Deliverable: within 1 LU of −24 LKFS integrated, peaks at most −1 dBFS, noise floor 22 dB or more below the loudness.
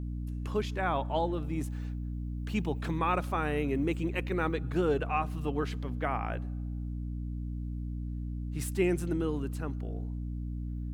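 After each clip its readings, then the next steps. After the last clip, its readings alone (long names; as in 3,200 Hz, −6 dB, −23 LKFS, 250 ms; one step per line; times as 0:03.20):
mains hum 60 Hz; hum harmonics up to 300 Hz; level of the hum −33 dBFS; integrated loudness −33.5 LKFS; sample peak −15.5 dBFS; target loudness −24.0 LKFS
→ hum removal 60 Hz, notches 5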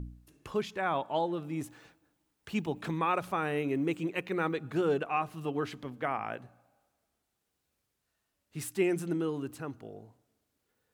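mains hum none found; integrated loudness −33.0 LKFS; sample peak −16.0 dBFS; target loudness −24.0 LKFS
→ level +9 dB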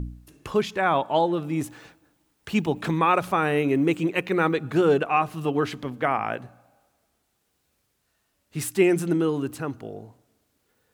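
integrated loudness −24.0 LKFS; sample peak −7.0 dBFS; background noise floor −73 dBFS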